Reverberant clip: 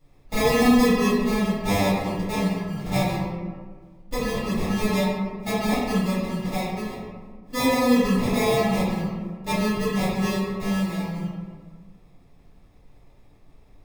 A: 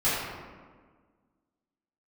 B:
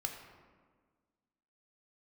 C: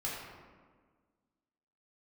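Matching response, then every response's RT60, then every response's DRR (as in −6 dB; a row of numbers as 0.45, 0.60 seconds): A; 1.6, 1.6, 1.6 seconds; −13.5, 2.5, −6.5 decibels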